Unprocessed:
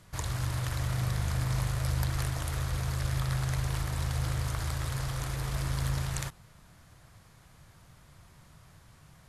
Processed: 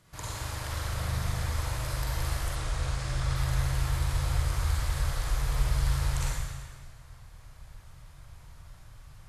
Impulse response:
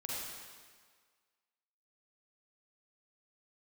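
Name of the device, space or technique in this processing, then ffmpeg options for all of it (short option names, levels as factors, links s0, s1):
stairwell: -filter_complex "[0:a]asubboost=boost=8:cutoff=71[s0];[1:a]atrim=start_sample=2205[s1];[s0][s1]afir=irnorm=-1:irlink=0,asettb=1/sr,asplit=3[s2][s3][s4];[s2]atrim=end=2.554[s5];[s3]atrim=start=2.55:end=3.36,asetpts=PTS-STARTPTS,afade=t=in:d=0.004:c=qsin,afade=t=out:st=0.806:d=0.004:c=qsin,lowpass=f=9800:w=0.5412,lowpass=f=9800:w=1.3066[s6];[s4]atrim=start=3.356[s7];[s5][s6]acrossfade=d=0.004:c1=hsin:c2=qsin[s8];[s8][s7]acrossfade=d=0.004:c1=qsin:c2=hsin,lowshelf=f=150:g=-4"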